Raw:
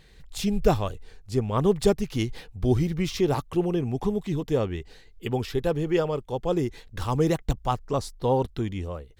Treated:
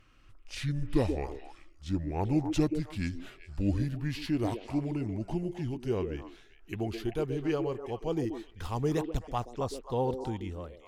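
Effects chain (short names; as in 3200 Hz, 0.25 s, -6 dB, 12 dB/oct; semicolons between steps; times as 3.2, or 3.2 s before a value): speed glide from 68% -> 101%; delay with a stepping band-pass 0.13 s, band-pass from 360 Hz, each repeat 1.4 oct, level -5 dB; gain -7 dB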